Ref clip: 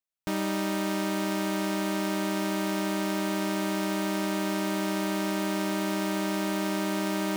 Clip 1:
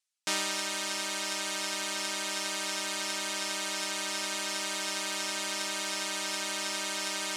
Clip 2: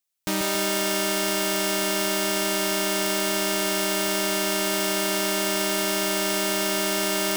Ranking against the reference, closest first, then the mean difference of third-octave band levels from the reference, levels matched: 2, 1; 5.0 dB, 7.5 dB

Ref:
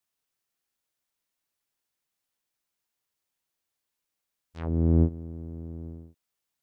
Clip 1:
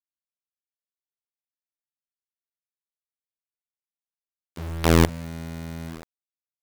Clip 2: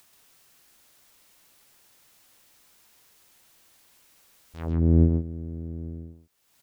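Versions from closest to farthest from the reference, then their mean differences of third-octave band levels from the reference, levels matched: 2, 1; 2.0 dB, 13.0 dB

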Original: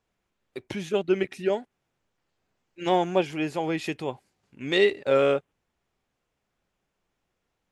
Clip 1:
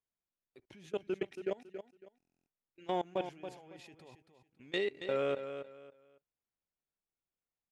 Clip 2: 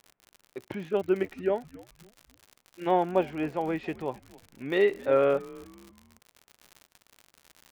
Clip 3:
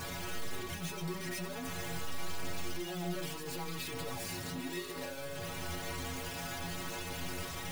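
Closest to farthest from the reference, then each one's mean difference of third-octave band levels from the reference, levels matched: 2, 1, 3; 4.0 dB, 5.0 dB, 16.5 dB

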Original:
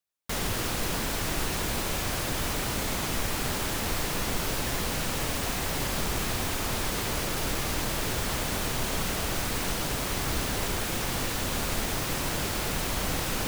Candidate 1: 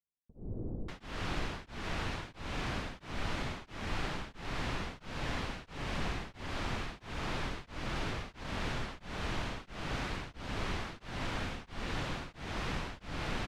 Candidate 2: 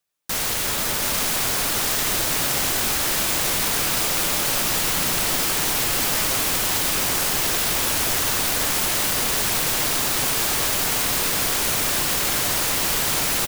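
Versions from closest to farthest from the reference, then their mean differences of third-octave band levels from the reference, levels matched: 2, 1; 4.0 dB, 10.0 dB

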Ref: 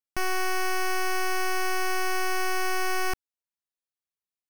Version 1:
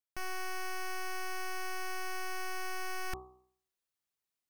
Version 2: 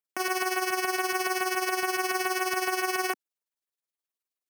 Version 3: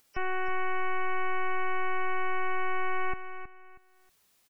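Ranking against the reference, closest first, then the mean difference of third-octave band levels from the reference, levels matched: 1, 2, 3; 1.5 dB, 4.0 dB, 15.0 dB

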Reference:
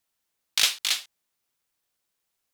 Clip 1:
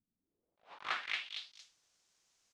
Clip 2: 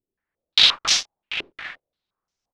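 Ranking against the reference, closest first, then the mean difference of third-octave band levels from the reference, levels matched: 2, 1; 8.5 dB, 18.0 dB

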